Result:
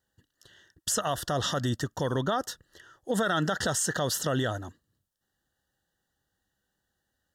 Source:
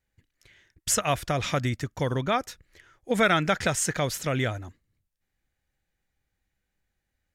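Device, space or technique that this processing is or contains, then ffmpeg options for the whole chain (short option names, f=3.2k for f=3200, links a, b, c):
PA system with an anti-feedback notch: -af "highpass=f=160:p=1,asuperstop=centerf=2300:order=12:qfactor=2.7,alimiter=limit=-22.5dB:level=0:latency=1:release=45,volume=4dB"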